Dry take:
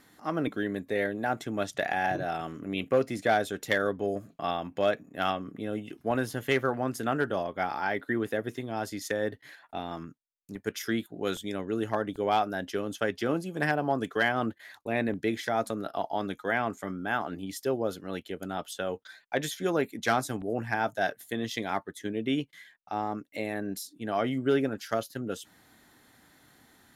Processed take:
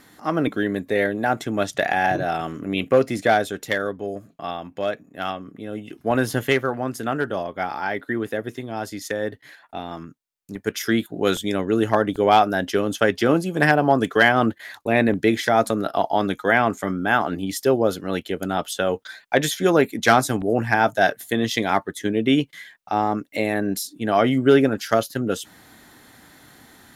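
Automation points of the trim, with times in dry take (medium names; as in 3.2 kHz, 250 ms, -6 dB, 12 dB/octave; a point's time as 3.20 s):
3.20 s +8 dB
3.99 s +1 dB
5.66 s +1 dB
6.38 s +11 dB
6.62 s +4 dB
10.06 s +4 dB
11.17 s +10.5 dB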